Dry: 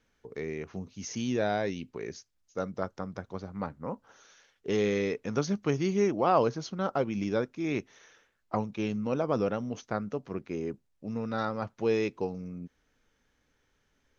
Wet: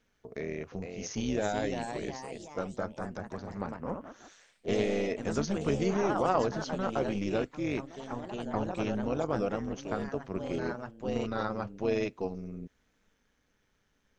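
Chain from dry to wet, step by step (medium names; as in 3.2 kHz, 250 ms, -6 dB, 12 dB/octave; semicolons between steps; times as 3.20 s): in parallel at -2 dB: peak limiter -22 dBFS, peak gain reduction 10 dB; on the sum: AM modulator 200 Hz, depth 50%; ever faster or slower copies 499 ms, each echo +2 st, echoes 3, each echo -6 dB; trim -3 dB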